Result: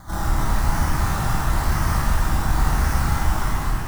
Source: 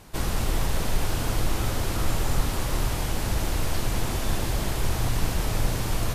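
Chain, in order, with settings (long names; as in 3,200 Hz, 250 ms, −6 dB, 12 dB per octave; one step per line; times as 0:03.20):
fade-out on the ending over 0.89 s
parametric band 6,300 Hz +9.5 dB 0.97 octaves
in parallel at +2 dB: downward compressor, threshold −29 dBFS, peak gain reduction 13.5 dB
on the sum: time stretch by phase vocoder 0.63×
sample-and-hold swept by an LFO 16×, swing 60% 0.98 Hz
phaser with its sweep stopped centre 1,100 Hz, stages 4
hard clipping −20 dBFS, distortion −15 dB
on a send: flutter between parallel walls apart 4.7 metres, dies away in 0.22 s
on the sum: reverb with rising layers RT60 1.9 s, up +7 semitones, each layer −8 dB, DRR −4.5 dB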